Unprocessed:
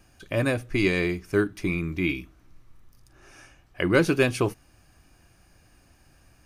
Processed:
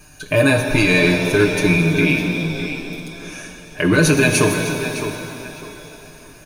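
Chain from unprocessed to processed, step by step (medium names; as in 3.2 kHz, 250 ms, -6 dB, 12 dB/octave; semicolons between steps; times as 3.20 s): rippled EQ curve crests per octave 1.5, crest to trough 8 dB; peak limiter -17 dBFS, peak gain reduction 11 dB; treble shelf 4.5 kHz +6.5 dB; comb 6.6 ms, depth 89%; tape echo 609 ms, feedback 32%, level -9 dB, low-pass 4.6 kHz; pitch-shifted reverb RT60 2.8 s, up +7 st, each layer -8 dB, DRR 5 dB; trim +8 dB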